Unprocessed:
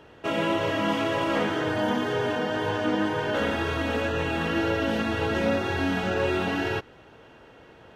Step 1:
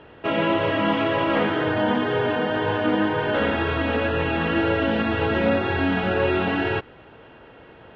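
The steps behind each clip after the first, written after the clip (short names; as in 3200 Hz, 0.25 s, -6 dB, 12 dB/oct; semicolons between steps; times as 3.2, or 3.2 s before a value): LPF 3500 Hz 24 dB/oct; gain +4 dB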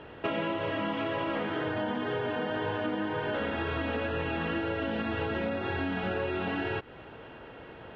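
compressor 12:1, threshold -28 dBFS, peak gain reduction 13 dB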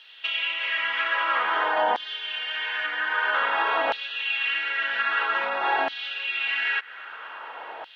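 LFO high-pass saw down 0.51 Hz 730–4000 Hz; gain +8.5 dB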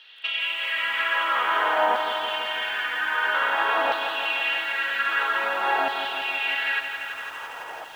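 lo-fi delay 0.167 s, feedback 80%, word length 8-bit, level -8 dB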